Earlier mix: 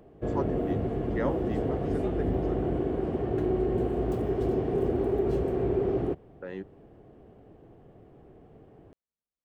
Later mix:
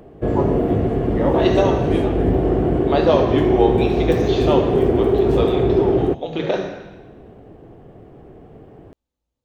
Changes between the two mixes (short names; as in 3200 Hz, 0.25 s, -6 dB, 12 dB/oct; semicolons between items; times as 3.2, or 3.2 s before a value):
second voice: unmuted; background +10.5 dB; reverb: on, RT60 1.1 s